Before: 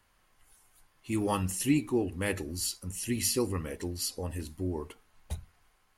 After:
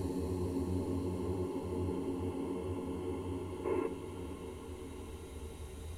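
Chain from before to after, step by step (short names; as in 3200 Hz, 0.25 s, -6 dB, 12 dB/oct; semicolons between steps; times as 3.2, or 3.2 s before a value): Paulstretch 12×, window 1.00 s, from 4.65; delay with a stepping band-pass 0.405 s, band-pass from 240 Hz, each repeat 1.4 oct, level -4.5 dB; spectral gain 3.65–3.87, 280–2700 Hz +10 dB; gain -1.5 dB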